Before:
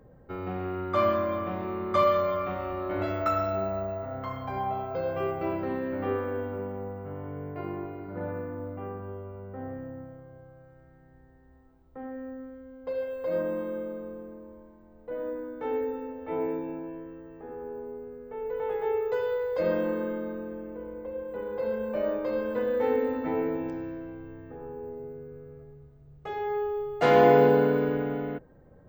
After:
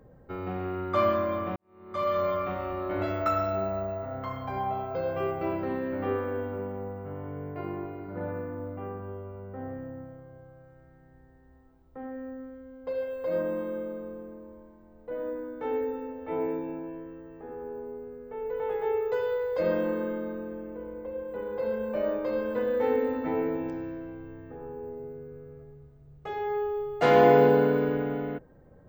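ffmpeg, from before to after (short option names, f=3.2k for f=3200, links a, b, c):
-filter_complex "[0:a]asplit=2[a][b];[a]atrim=end=1.56,asetpts=PTS-STARTPTS,afade=t=out:st=1.556:d=0.004:c=hsin[c];[b]atrim=start=1.56,asetpts=PTS-STARTPTS,afade=t=in:d=0.69:c=qua[d];[c][d]concat=n=2:v=0:a=1"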